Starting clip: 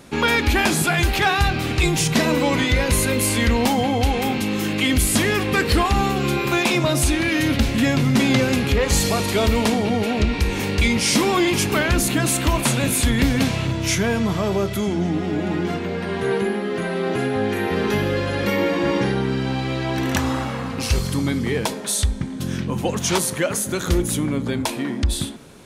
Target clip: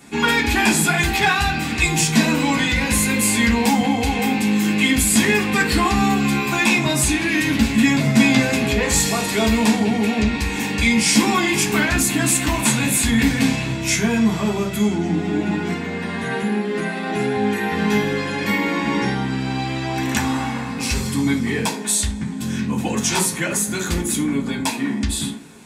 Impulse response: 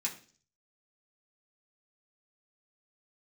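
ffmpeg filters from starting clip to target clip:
-filter_complex "[0:a]asettb=1/sr,asplit=3[s0][s1][s2];[s0]atrim=end=8.004[s3];[s1]atrim=start=8:end=8.81,asetpts=PTS-STARTPTS,afade=t=in:d=0.004:c=qsin,afade=t=out:st=0.806:d=0.004:c=qsin,aeval=exprs='val(0)+0.0631*sin(2*PI*650*n/s)':c=same[s4];[s2]atrim=start=8.806[s5];[s3][s4]acrossfade=d=0.004:c1=hsin:c2=qsin[s6];[s6][s5]acrossfade=d=0.004:c1=qsin:c2=hsin[s7];[1:a]atrim=start_sample=2205,afade=t=out:st=0.15:d=0.01,atrim=end_sample=7056[s8];[s7][s8]afir=irnorm=-1:irlink=0"

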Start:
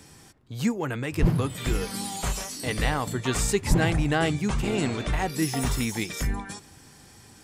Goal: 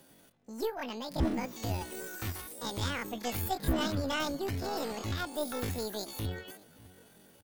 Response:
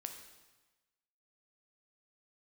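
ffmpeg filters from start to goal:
-filter_complex "[0:a]asplit=2[s0][s1];[s1]adelay=603,lowpass=f=1300:p=1,volume=0.0944,asplit=2[s2][s3];[s3]adelay=603,lowpass=f=1300:p=1,volume=0.46,asplit=2[s4][s5];[s5]adelay=603,lowpass=f=1300:p=1,volume=0.46[s6];[s0][s2][s4][s6]amix=inputs=4:normalize=0,aeval=exprs='0.376*(cos(1*acos(clip(val(0)/0.376,-1,1)))-cos(1*PI/2))+0.0133*(cos(3*acos(clip(val(0)/0.376,-1,1)))-cos(3*PI/2))+0.00299*(cos(5*acos(clip(val(0)/0.376,-1,1)))-cos(5*PI/2))+0.0211*(cos(6*acos(clip(val(0)/0.376,-1,1)))-cos(6*PI/2))':c=same,asetrate=83250,aresample=44100,atempo=0.529732,volume=0.398"

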